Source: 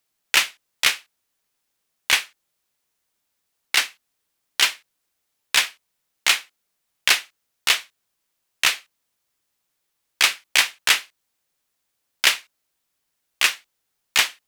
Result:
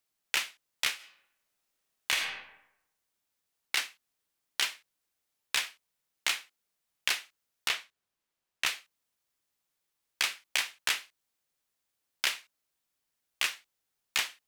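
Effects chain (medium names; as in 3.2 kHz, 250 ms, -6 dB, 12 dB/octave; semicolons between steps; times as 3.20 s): 0.95–2.16 s: reverb throw, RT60 0.82 s, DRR 0.5 dB; 7.68–8.66 s: treble shelf 5.1 kHz -8 dB; compression, threshold -18 dBFS, peak gain reduction 7.5 dB; trim -7 dB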